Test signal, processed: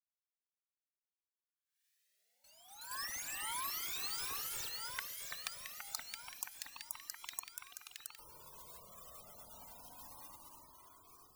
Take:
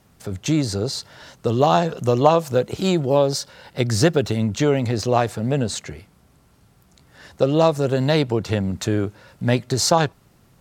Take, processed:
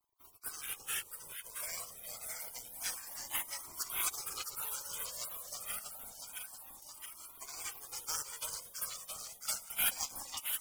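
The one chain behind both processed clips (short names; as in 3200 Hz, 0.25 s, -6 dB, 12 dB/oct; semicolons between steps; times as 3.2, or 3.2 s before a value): Chebyshev high-pass 1700 Hz, order 4; in parallel at -11.5 dB: companded quantiser 4-bit; on the sum: echo with dull and thin repeats by turns 0.335 s, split 2100 Hz, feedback 80%, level -3 dB; spectral gate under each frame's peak -25 dB weak; cascading flanger rising 0.28 Hz; gain +13.5 dB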